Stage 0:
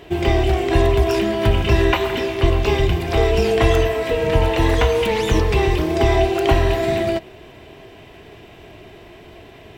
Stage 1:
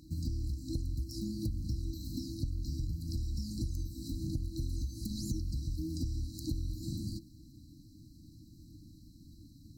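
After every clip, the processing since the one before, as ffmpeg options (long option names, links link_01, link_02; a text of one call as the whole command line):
ffmpeg -i in.wav -af "afftfilt=real='re*(1-between(b*sr/4096,330,3900))':imag='im*(1-between(b*sr/4096,330,3900))':win_size=4096:overlap=0.75,acompressor=threshold=-25dB:ratio=6,volume=-7.5dB" out.wav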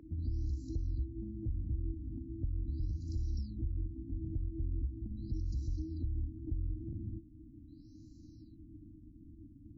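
ffmpeg -i in.wav -filter_complex "[0:a]acrossover=split=140[link_01][link_02];[link_02]acompressor=threshold=-50dB:ratio=3[link_03];[link_01][link_03]amix=inputs=2:normalize=0,equalizer=frequency=160:width_type=o:width=0.67:gain=-7,equalizer=frequency=400:width_type=o:width=0.67:gain=8,equalizer=frequency=4000:width_type=o:width=0.67:gain=-10,afftfilt=real='re*lt(b*sr/1024,750*pow(7400/750,0.5+0.5*sin(2*PI*0.4*pts/sr)))':imag='im*lt(b*sr/1024,750*pow(7400/750,0.5+0.5*sin(2*PI*0.4*pts/sr)))':win_size=1024:overlap=0.75,volume=1dB" out.wav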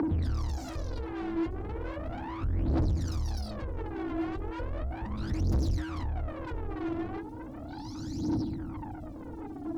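ffmpeg -i in.wav -filter_complex "[0:a]asplit=2[link_01][link_02];[link_02]highpass=frequency=720:poles=1,volume=45dB,asoftclip=type=tanh:threshold=-24.5dB[link_03];[link_01][link_03]amix=inputs=2:normalize=0,lowpass=frequency=2500:poles=1,volume=-6dB,aphaser=in_gain=1:out_gain=1:delay=3:decay=0.74:speed=0.36:type=triangular,volume=-6dB" out.wav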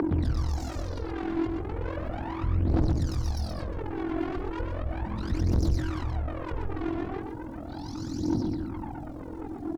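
ffmpeg -i in.wav -filter_complex "[0:a]tremolo=f=43:d=0.75,asplit=2[link_01][link_02];[link_02]aecho=0:1:125:0.501[link_03];[link_01][link_03]amix=inputs=2:normalize=0,volume=5.5dB" out.wav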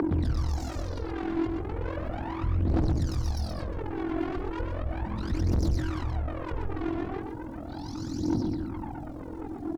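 ffmpeg -i in.wav -af "asoftclip=type=hard:threshold=-20dB" out.wav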